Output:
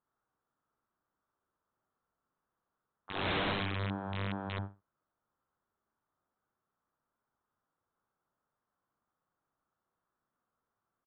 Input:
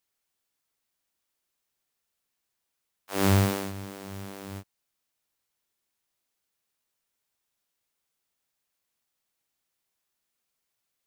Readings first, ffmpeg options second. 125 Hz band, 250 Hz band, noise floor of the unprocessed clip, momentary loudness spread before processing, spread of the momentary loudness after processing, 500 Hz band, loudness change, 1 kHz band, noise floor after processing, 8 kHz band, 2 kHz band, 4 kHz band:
−9.5 dB, −9.0 dB, −82 dBFS, 19 LU, 10 LU, −7.0 dB, −9.5 dB, −3.0 dB, below −85 dBFS, below −35 dB, −0.5 dB, −1.0 dB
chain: -af "highshelf=frequency=1800:width_type=q:width=3:gain=-11.5,aecho=1:1:60|120|180:0.631|0.126|0.0252,aresample=8000,aeval=exprs='(mod(23.7*val(0)+1,2)-1)/23.7':channel_layout=same,aresample=44100,equalizer=frequency=160:width=0.37:gain=5,volume=-1.5dB"

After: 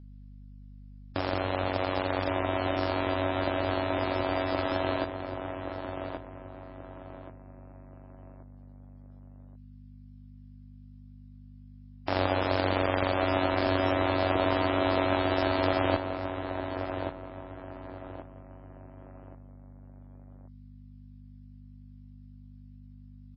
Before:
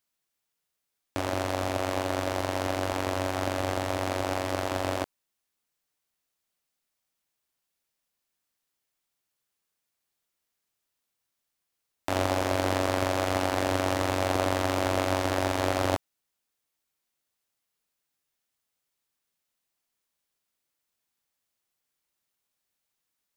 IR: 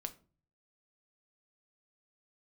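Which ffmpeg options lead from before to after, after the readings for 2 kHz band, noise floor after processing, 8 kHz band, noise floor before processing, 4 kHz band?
+0.5 dB, −49 dBFS, below −40 dB, −83 dBFS, −1.0 dB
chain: -filter_complex "[0:a]aeval=exprs='val(0)+0.00501*(sin(2*PI*50*n/s)+sin(2*PI*2*50*n/s)/2+sin(2*PI*3*50*n/s)/3+sin(2*PI*4*50*n/s)/4+sin(2*PI*5*50*n/s)/5)':channel_layout=same,asplit=2[link_01][link_02];[link_02]adelay=1128,lowpass=frequency=2000:poles=1,volume=-6.5dB,asplit=2[link_03][link_04];[link_04]adelay=1128,lowpass=frequency=2000:poles=1,volume=0.36,asplit=2[link_05][link_06];[link_06]adelay=1128,lowpass=frequency=2000:poles=1,volume=0.36,asplit=2[link_07][link_08];[link_08]adelay=1128,lowpass=frequency=2000:poles=1,volume=0.36[link_09];[link_01][link_03][link_05][link_07][link_09]amix=inputs=5:normalize=0" -ar 16000 -c:a libmp3lame -b:a 16k

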